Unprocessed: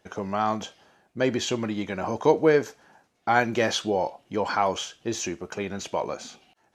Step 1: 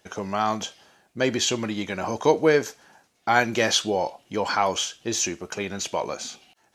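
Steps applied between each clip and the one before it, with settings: high shelf 2500 Hz +9 dB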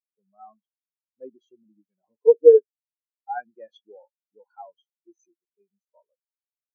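spectral expander 4:1; gain +3 dB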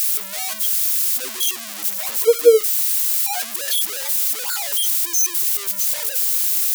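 switching spikes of -10 dBFS

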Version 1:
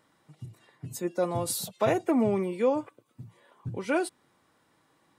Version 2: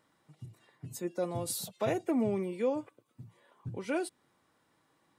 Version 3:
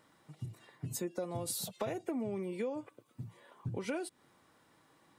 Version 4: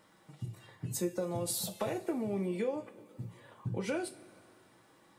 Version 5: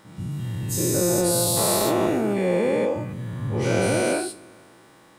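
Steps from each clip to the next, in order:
dynamic EQ 1100 Hz, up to -5 dB, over -41 dBFS, Q 1.1; gain -4.5 dB
compressor 8:1, threshold -39 dBFS, peak gain reduction 13.5 dB; gain +5 dB
two-slope reverb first 0.27 s, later 2.5 s, from -21 dB, DRR 5 dB; gain +1.5 dB
spectral dilation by 0.48 s; gain +5 dB

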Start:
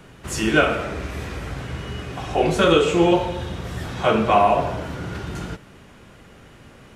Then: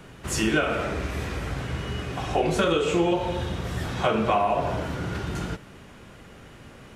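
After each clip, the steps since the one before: compressor 6:1, threshold -19 dBFS, peak gain reduction 8.5 dB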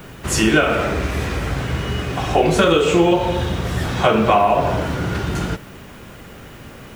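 added noise violet -62 dBFS; gain +8 dB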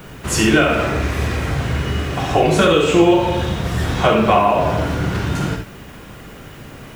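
non-linear reverb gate 90 ms rising, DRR 4.5 dB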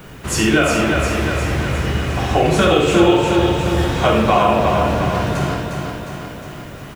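feedback echo 0.357 s, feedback 59%, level -5 dB; gain -1 dB

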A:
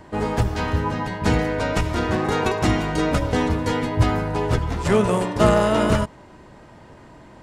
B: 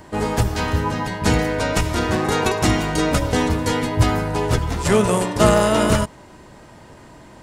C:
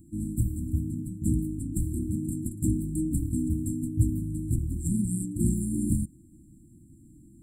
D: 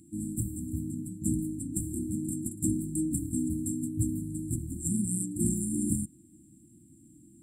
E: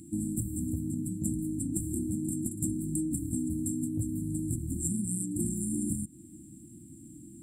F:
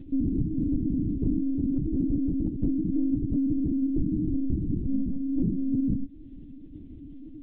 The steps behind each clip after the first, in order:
high shelf 5300 Hz +11 dB; gain +1.5 dB
FFT band-reject 350–7300 Hz; gain -6.5 dB
weighting filter D
compressor 6:1, threshold -36 dBFS, peak gain reduction 13 dB; gain +7 dB
monotone LPC vocoder at 8 kHz 270 Hz; gain +7 dB

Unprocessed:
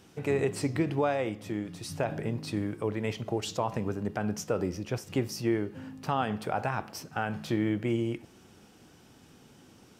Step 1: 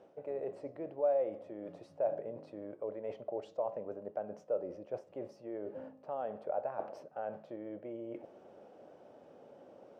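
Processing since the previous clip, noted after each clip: reverse; compressor 5:1, threshold -40 dBFS, peak gain reduction 16 dB; reverse; band-pass 580 Hz, Q 6.5; gain +15.5 dB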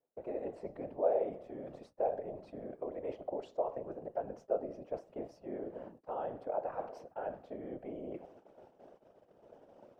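gate -55 dBFS, range -29 dB; whisperiser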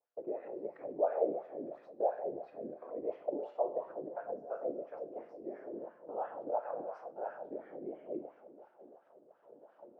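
plate-style reverb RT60 1.5 s, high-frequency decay 0.95×, DRR 3.5 dB; LFO band-pass sine 2.9 Hz 290–1600 Hz; gain +5 dB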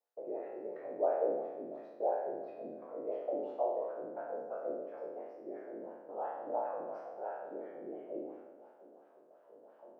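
spectral trails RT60 1.00 s; HPF 220 Hz 6 dB/oct; gain -3.5 dB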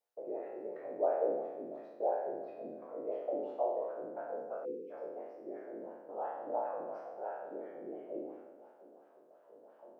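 spectral delete 4.65–4.91, 520–2100 Hz

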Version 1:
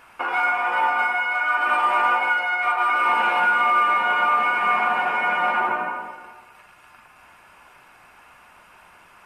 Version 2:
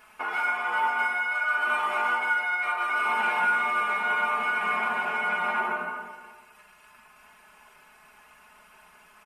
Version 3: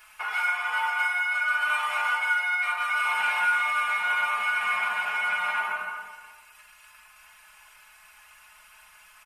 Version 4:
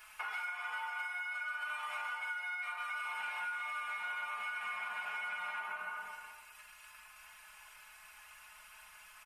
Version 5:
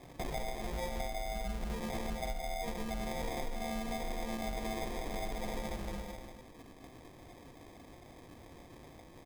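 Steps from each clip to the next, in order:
high shelf 5600 Hz +6.5 dB; comb 4.7 ms, depth 84%; gain -7.5 dB
passive tone stack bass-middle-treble 10-0-10; gain +7 dB
compressor 6:1, threshold -35 dBFS, peak gain reduction 14 dB; gain -3 dB
sample-and-hold 31×; gain +3 dB

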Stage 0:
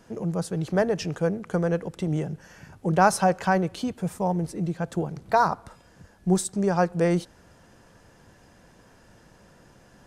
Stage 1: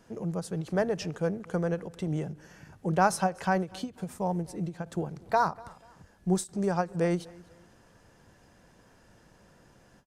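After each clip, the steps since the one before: feedback echo 0.244 s, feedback 34%, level -23.5 dB; ending taper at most 280 dB/s; gain -4.5 dB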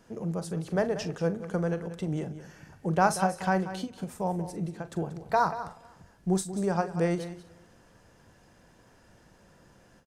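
doubler 42 ms -13 dB; echo 0.185 s -13 dB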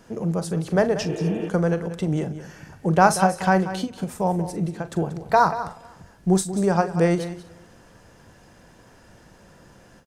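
spectral repair 1.12–1.46, 300–3600 Hz before; gain +7.5 dB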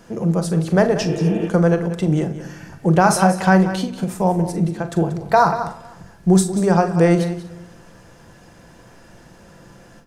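reverb RT60 0.65 s, pre-delay 6 ms, DRR 10 dB; maximiser +6 dB; gain -2 dB

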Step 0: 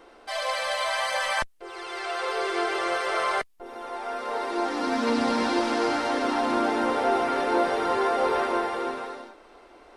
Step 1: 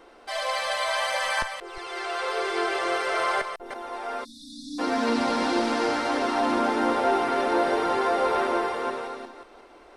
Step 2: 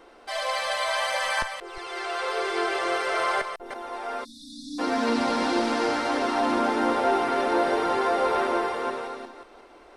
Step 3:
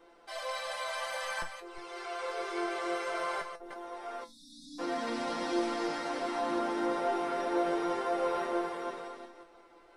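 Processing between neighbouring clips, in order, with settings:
reverse delay 0.178 s, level -8 dB; spectral delete 4.24–4.79, 320–3400 Hz
nothing audible
resonator 170 Hz, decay 0.17 s, harmonics all, mix 90%

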